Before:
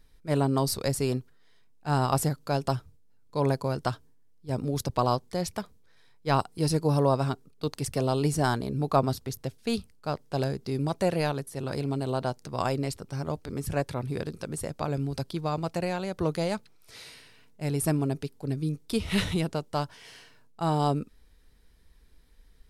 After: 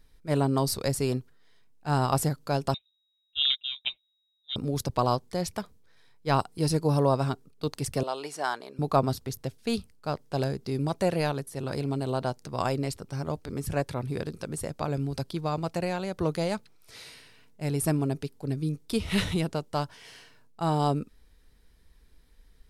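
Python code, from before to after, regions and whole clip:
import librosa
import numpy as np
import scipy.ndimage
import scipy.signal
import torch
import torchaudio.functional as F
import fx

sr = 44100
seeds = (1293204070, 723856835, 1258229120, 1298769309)

y = fx.chain(x, sr, fx.freq_invert(carrier_hz=3800),
    fx.upward_expand(threshold_db=-37.0, expansion=2.5), at=(2.74, 4.56))
y = fx.chain(y, sr, fx.highpass(hz=660.0, slope=12),
    fx.high_shelf(hz=6500.0, db=-11.0), at=(8.03, 8.79))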